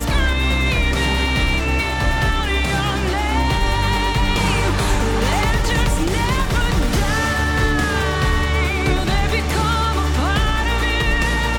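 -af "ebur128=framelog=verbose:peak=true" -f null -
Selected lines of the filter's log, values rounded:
Integrated loudness:
  I:         -18.5 LUFS
  Threshold: -28.5 LUFS
Loudness range:
  LRA:         0.2 LU
  Threshold: -38.6 LUFS
  LRA low:   -18.7 LUFS
  LRA high:  -18.5 LUFS
True peak:
  Peak:       -5.6 dBFS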